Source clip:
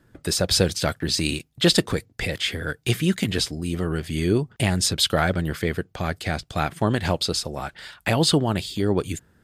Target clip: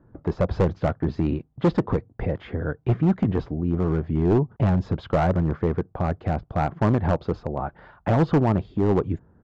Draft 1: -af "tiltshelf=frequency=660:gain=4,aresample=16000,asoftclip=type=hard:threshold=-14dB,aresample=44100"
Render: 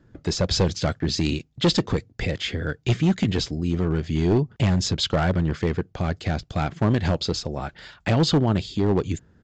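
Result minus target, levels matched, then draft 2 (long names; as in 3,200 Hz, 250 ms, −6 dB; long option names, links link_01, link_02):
1,000 Hz band −3.0 dB
-af "lowpass=frequency=1000:width_type=q:width=1.7,tiltshelf=frequency=660:gain=4,aresample=16000,asoftclip=type=hard:threshold=-14dB,aresample=44100"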